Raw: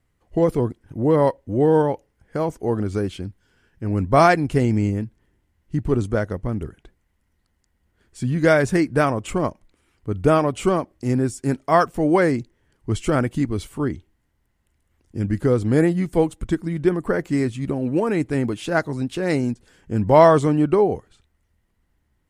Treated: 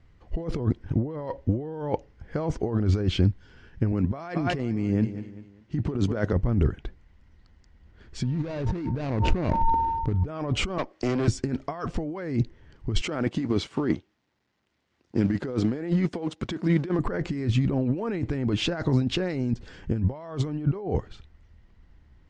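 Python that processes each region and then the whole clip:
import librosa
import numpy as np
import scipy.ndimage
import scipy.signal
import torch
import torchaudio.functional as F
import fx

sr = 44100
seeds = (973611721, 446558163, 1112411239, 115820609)

y = fx.chain(x, sr, fx.highpass(hz=150.0, slope=12),
    fx.echo_feedback(ms=197, feedback_pct=39, wet_db=-20.5), at=(3.92, 6.33))
y = fx.median_filter(y, sr, points=41, at=(8.23, 10.25), fade=0.02)
y = fx.dmg_tone(y, sr, hz=910.0, level_db=-49.0, at=(8.23, 10.25), fade=0.02)
y = fx.sustainer(y, sr, db_per_s=28.0, at=(8.23, 10.25), fade=0.02)
y = fx.chain(y, sr, fx.highpass(hz=440.0, slope=12),
    fx.tube_stage(drive_db=31.0, bias=0.6),
    fx.band_squash(depth_pct=100), at=(10.78, 11.28))
y = fx.chain(y, sr, fx.law_mismatch(coded='A'),
    fx.highpass(hz=210.0, slope=12), at=(13.01, 16.99))
y = fx.over_compress(y, sr, threshold_db=-29.0, ratio=-1.0)
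y = scipy.signal.sosfilt(scipy.signal.butter(4, 5600.0, 'lowpass', fs=sr, output='sos'), y)
y = fx.low_shelf(y, sr, hz=130.0, db=7.5)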